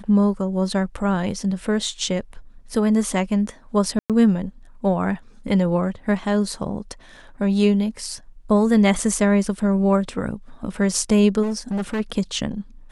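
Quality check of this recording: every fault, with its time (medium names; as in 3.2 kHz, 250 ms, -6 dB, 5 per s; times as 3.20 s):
3.99–4.10 s: dropout 107 ms
11.42–12.01 s: clipped -20.5 dBFS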